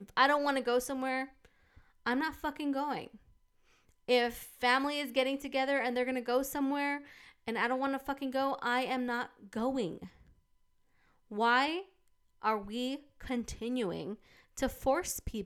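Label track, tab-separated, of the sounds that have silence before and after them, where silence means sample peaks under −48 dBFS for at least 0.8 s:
4.080000	10.080000	sound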